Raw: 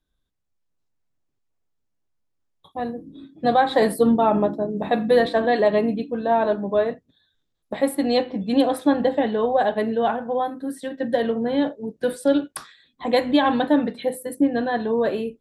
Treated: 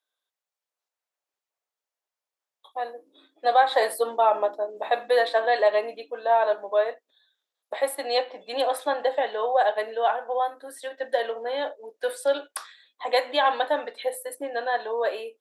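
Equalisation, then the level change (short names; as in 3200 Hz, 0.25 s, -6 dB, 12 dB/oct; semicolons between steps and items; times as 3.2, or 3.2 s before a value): HPF 530 Hz 24 dB/oct; 0.0 dB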